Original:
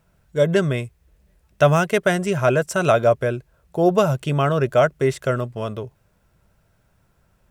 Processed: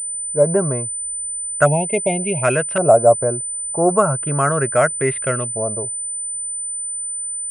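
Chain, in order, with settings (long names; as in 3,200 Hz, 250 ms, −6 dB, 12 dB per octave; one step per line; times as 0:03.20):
auto-filter low-pass saw up 0.36 Hz 660–2,800 Hz
time-frequency box erased 0:01.66–0:02.43, 980–2,100 Hz
switching amplifier with a slow clock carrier 9,000 Hz
level −1 dB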